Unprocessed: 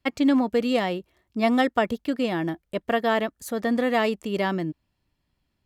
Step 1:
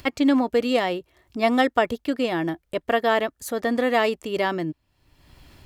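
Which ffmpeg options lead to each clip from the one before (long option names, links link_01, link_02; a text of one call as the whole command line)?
ffmpeg -i in.wav -af "equalizer=frequency=200:width=3.6:gain=-9,acompressor=mode=upward:threshold=-32dB:ratio=2.5,volume=2.5dB" out.wav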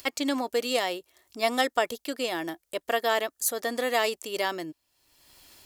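ffmpeg -i in.wav -af "bass=frequency=250:gain=-14,treble=frequency=4000:gain=14,volume=-4.5dB" out.wav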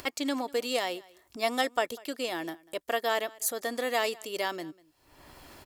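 ffmpeg -i in.wav -filter_complex "[0:a]acrossover=split=1900[link_01][link_02];[link_01]acompressor=mode=upward:threshold=-36dB:ratio=2.5[link_03];[link_03][link_02]amix=inputs=2:normalize=0,aecho=1:1:195:0.0668,volume=-3dB" out.wav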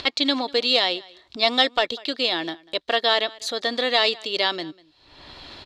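ffmpeg -i in.wav -af "asoftclip=type=hard:threshold=-19dB,lowpass=frequency=3900:width_type=q:width=5.6,volume=6dB" out.wav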